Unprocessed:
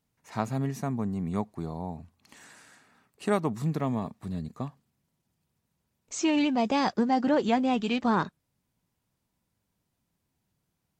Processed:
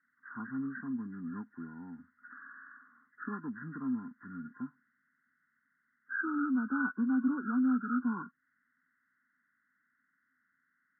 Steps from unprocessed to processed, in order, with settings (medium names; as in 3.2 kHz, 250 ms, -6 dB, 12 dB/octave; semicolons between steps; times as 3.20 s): knee-point frequency compression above 1 kHz 4:1; two resonant band-passes 610 Hz, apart 2.5 oct; tape noise reduction on one side only encoder only